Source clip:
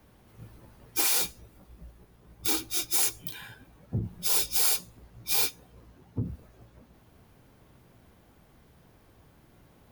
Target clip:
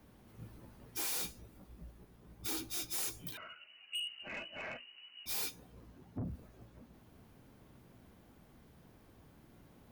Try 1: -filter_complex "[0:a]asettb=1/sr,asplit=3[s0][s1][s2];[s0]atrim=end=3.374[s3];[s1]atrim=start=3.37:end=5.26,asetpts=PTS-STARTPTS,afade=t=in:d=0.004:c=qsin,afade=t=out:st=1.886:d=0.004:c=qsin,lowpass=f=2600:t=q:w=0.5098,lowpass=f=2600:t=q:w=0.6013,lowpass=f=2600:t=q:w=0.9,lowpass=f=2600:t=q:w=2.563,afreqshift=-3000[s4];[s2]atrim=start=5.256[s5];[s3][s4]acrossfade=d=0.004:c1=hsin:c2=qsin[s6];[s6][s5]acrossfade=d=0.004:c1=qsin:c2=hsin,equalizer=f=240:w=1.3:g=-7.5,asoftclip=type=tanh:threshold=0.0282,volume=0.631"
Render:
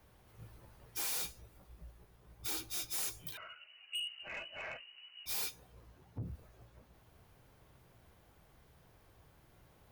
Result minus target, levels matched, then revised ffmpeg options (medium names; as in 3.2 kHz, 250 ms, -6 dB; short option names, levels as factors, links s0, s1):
250 Hz band -7.0 dB
-filter_complex "[0:a]asettb=1/sr,asplit=3[s0][s1][s2];[s0]atrim=end=3.374[s3];[s1]atrim=start=3.37:end=5.26,asetpts=PTS-STARTPTS,afade=t=in:d=0.004:c=qsin,afade=t=out:st=1.886:d=0.004:c=qsin,lowpass=f=2600:t=q:w=0.5098,lowpass=f=2600:t=q:w=0.6013,lowpass=f=2600:t=q:w=0.9,lowpass=f=2600:t=q:w=2.563,afreqshift=-3000[s4];[s2]atrim=start=5.256[s5];[s3][s4]acrossfade=d=0.004:c1=hsin:c2=qsin[s6];[s6][s5]acrossfade=d=0.004:c1=qsin:c2=hsin,equalizer=f=240:w=1.3:g=4.5,asoftclip=type=tanh:threshold=0.0282,volume=0.631"